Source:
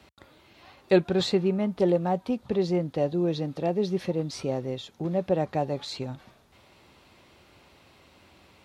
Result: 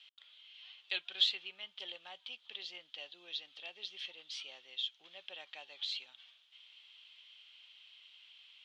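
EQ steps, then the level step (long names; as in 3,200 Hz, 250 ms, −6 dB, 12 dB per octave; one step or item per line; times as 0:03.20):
four-pole ladder band-pass 3,300 Hz, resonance 80%
high-shelf EQ 2,500 Hz −10.5 dB
+13.0 dB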